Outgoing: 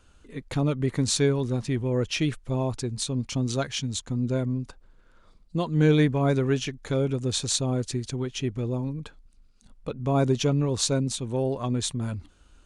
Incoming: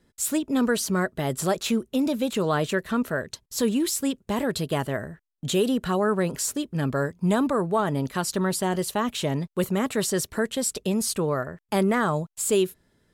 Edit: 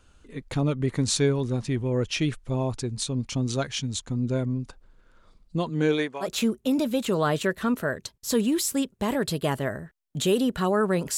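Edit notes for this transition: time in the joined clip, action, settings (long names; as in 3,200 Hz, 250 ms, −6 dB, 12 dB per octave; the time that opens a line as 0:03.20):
outgoing
0:05.69–0:06.28: high-pass filter 150 Hz → 990 Hz
0:06.24: continue with incoming from 0:01.52, crossfade 0.08 s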